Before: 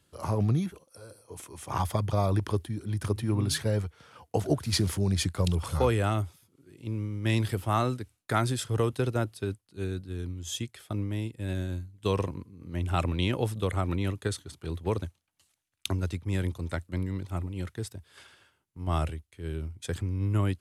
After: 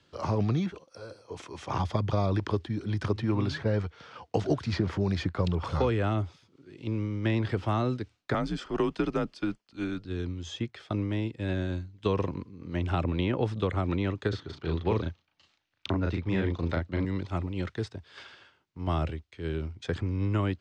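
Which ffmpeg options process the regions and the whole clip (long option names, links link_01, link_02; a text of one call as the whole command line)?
ffmpeg -i in.wav -filter_complex "[0:a]asettb=1/sr,asplit=3[link_01][link_02][link_03];[link_01]atrim=end=8.344[link_04];[link_02]atrim=start=8.34:end=10.05,asetpts=PTS-STARTPTS,afade=type=in:duration=0.004:curve=qsin,afade=type=out:start_time=1.706:duration=0.004:curve=qsin,highpass=210,bandreject=frequency=3900:width=10,afreqshift=-85[link_05];[link_03]atrim=start=10.046[link_06];[link_04][link_05]acrossfade=duration=0.004:curve1=hsin:curve2=qsin[link_07];[link_07][link_06]acrossfade=duration=0.004:curve1=qsin:curve2=hsin,asettb=1/sr,asplit=3[link_08][link_09][link_10];[link_08]atrim=end=14.294[link_11];[link_09]atrim=start=14.29:end=17.05,asetpts=PTS-STARTPTS,afade=type=in:duration=0.004:curve=qsin,afade=type=out:start_time=2.756:duration=0.004:curve=qsin,lowpass=5300,asplit=2[link_12][link_13];[link_13]adelay=36,volume=-2dB[link_14];[link_12][link_14]amix=inputs=2:normalize=0,atrim=end_sample=121716[link_15];[link_10]atrim=start=17.046[link_16];[link_11][link_15]acrossfade=duration=0.004:curve1=hsin:curve2=qsin[link_17];[link_17][link_16]acrossfade=duration=0.004:curve1=qsin:curve2=hsin,lowpass=frequency=5500:width=0.5412,lowpass=frequency=5500:width=1.3066,lowshelf=frequency=130:gain=-8.5,acrossover=split=430|860|2100[link_18][link_19][link_20][link_21];[link_18]acompressor=threshold=-30dB:ratio=4[link_22];[link_19]acompressor=threshold=-43dB:ratio=4[link_23];[link_20]acompressor=threshold=-44dB:ratio=4[link_24];[link_21]acompressor=threshold=-52dB:ratio=4[link_25];[link_22][link_23][link_24][link_25]amix=inputs=4:normalize=0,volume=6dB" out.wav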